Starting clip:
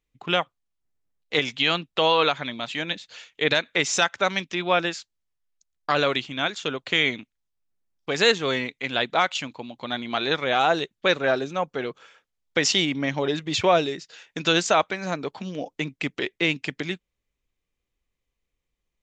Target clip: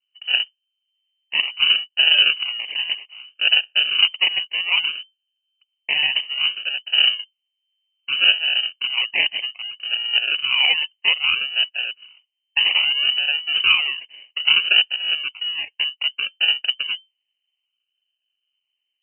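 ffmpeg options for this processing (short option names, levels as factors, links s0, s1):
-af "acrusher=samples=35:mix=1:aa=0.000001:lfo=1:lforange=21:lforate=0.62,equalizer=f=125:t=o:w=1:g=11,equalizer=f=250:t=o:w=1:g=7,equalizer=f=2000:t=o:w=1:g=-3,lowpass=f=2600:t=q:w=0.5098,lowpass=f=2600:t=q:w=0.6013,lowpass=f=2600:t=q:w=0.9,lowpass=f=2600:t=q:w=2.563,afreqshift=-3100,volume=0.891"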